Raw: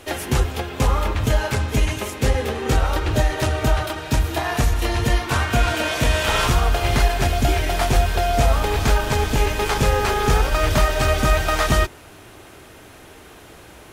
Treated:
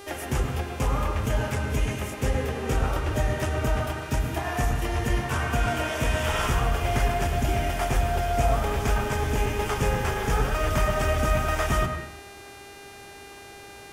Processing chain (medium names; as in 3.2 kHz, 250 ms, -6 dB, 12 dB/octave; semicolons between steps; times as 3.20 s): peaking EQ 4.1 kHz -13 dB 0.31 oct; mains buzz 400 Hz, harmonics 32, -37 dBFS -5 dB/octave; on a send: reverberation RT60 0.85 s, pre-delay 105 ms, DRR 5 dB; on the sum: trim -7 dB